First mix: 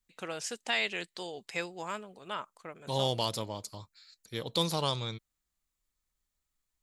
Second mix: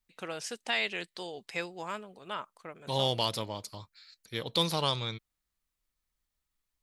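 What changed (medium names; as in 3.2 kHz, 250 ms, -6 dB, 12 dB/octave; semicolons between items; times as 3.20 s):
second voice: add peaking EQ 2.2 kHz +4.5 dB 1.7 oct; master: add peaking EQ 7.2 kHz -5.5 dB 0.29 oct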